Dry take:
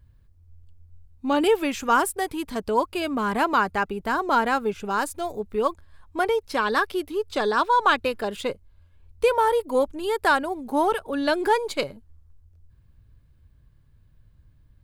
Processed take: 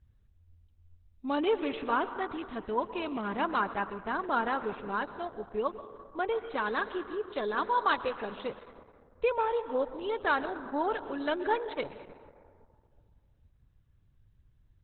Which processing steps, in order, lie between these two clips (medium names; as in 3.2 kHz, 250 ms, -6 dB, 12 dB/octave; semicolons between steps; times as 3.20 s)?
1.72–2.46 s: gate -41 dBFS, range -39 dB; plate-style reverb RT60 2.1 s, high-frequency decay 0.4×, pre-delay 105 ms, DRR 11 dB; trim -8 dB; Opus 8 kbps 48 kHz